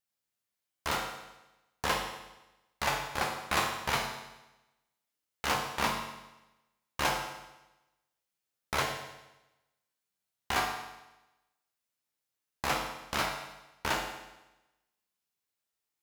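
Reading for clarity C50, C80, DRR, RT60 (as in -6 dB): 5.0 dB, 7.0 dB, 0.5 dB, 1.0 s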